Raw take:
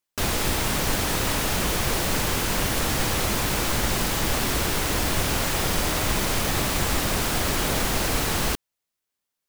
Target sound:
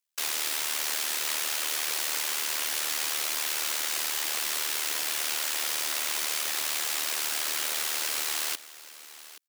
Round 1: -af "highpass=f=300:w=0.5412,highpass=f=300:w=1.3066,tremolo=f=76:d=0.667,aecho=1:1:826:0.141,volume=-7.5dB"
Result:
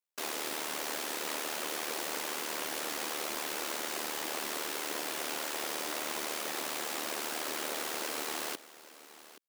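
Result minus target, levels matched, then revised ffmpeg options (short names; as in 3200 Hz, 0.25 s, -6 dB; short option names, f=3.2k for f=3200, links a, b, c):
1000 Hz band +7.5 dB
-af "highpass=f=300:w=0.5412,highpass=f=300:w=1.3066,tiltshelf=f=980:g=-9.5,tremolo=f=76:d=0.667,aecho=1:1:826:0.141,volume=-7.5dB"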